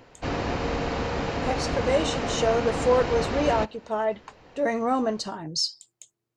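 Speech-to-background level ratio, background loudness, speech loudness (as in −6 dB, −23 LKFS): 2.5 dB, −29.0 LKFS, −26.5 LKFS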